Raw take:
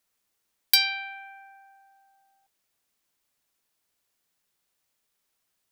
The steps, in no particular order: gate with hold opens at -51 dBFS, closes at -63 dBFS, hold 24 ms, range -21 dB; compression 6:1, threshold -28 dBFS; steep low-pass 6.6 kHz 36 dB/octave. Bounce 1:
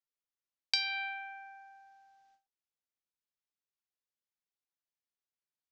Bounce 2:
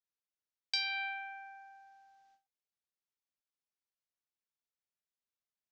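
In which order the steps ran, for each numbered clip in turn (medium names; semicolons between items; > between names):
gate with hold > steep low-pass > compression; compression > gate with hold > steep low-pass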